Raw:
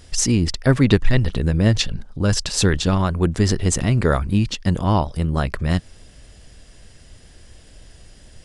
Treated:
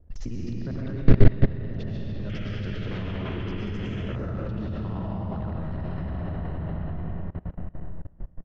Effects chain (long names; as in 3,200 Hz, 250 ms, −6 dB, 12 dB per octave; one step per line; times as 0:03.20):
reversed piece by piece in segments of 51 ms
high-frequency loss of the air 200 metres
downsampling to 16,000 Hz
spectral tilt −1.5 dB per octave
low-pass that shuts in the quiet parts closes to 640 Hz, open at −12 dBFS
convolution reverb RT60 4.6 s, pre-delay 75 ms, DRR −6.5 dB
in parallel at −1 dB: downward compressor 5 to 1, threshold −28 dBFS, peak gain reduction 27 dB
on the sum: sound drawn into the spectrogram noise, 0:02.29–0:04.16, 1,200–3,400 Hz −24 dBFS
output level in coarse steps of 23 dB
highs frequency-modulated by the lows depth 0.37 ms
level −7 dB